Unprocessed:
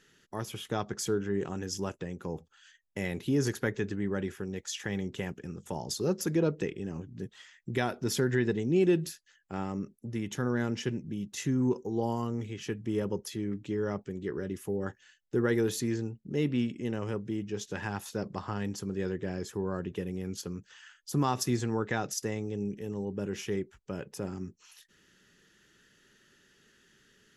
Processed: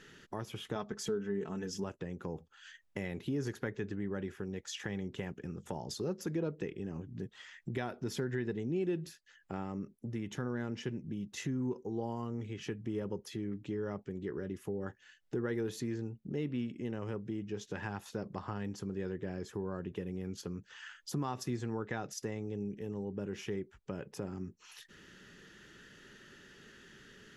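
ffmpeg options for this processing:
ffmpeg -i in.wav -filter_complex "[0:a]asettb=1/sr,asplit=3[link_01][link_02][link_03];[link_01]atrim=end=0.754[link_04];[link_02]atrim=start=0.75:end=1.84,asetpts=PTS-STARTPTS,afade=type=in:duration=0.004:curve=qsin,afade=type=out:start_time=1.086:duration=0.004:curve=qsin,aecho=1:1:4.6:0.65,atrim=end_sample=48069[link_05];[link_03]atrim=start=1.836[link_06];[link_04][link_05]acrossfade=duration=0.004:curve1=hsin:curve2=qsin[link_07];[link_07][link_06]acrossfade=duration=0.004:curve1=qsin:curve2=hsin,highshelf=frequency=5200:gain=-10.5,acompressor=threshold=-56dB:ratio=2,volume=9dB" out.wav

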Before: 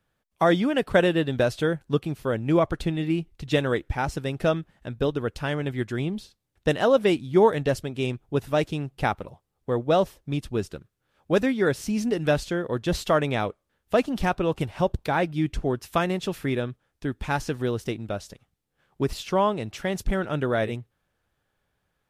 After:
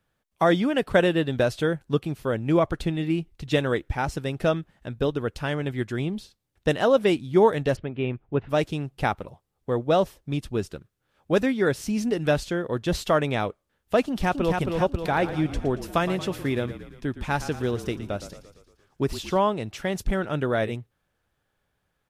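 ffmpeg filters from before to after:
ffmpeg -i in.wav -filter_complex "[0:a]asplit=3[link_01][link_02][link_03];[link_01]afade=type=out:start_time=7.75:duration=0.02[link_04];[link_02]lowpass=frequency=2700:width=0.5412,lowpass=frequency=2700:width=1.3066,afade=type=in:start_time=7.75:duration=0.02,afade=type=out:start_time=8.49:duration=0.02[link_05];[link_03]afade=type=in:start_time=8.49:duration=0.02[link_06];[link_04][link_05][link_06]amix=inputs=3:normalize=0,asplit=2[link_07][link_08];[link_08]afade=type=in:start_time=14.03:duration=0.01,afade=type=out:start_time=14.56:duration=0.01,aecho=0:1:270|540|810|1080|1350|1620|1890:0.630957|0.347027|0.190865|0.104976|0.0577365|0.0317551|0.0174653[link_09];[link_07][link_09]amix=inputs=2:normalize=0,asplit=3[link_10][link_11][link_12];[link_10]afade=type=out:start_time=15.09:duration=0.02[link_13];[link_11]asplit=7[link_14][link_15][link_16][link_17][link_18][link_19][link_20];[link_15]adelay=115,afreqshift=-33,volume=-13dB[link_21];[link_16]adelay=230,afreqshift=-66,volume=-17.6dB[link_22];[link_17]adelay=345,afreqshift=-99,volume=-22.2dB[link_23];[link_18]adelay=460,afreqshift=-132,volume=-26.7dB[link_24];[link_19]adelay=575,afreqshift=-165,volume=-31.3dB[link_25];[link_20]adelay=690,afreqshift=-198,volume=-35.9dB[link_26];[link_14][link_21][link_22][link_23][link_24][link_25][link_26]amix=inputs=7:normalize=0,afade=type=in:start_time=15.09:duration=0.02,afade=type=out:start_time=19.37:duration=0.02[link_27];[link_12]afade=type=in:start_time=19.37:duration=0.02[link_28];[link_13][link_27][link_28]amix=inputs=3:normalize=0" out.wav

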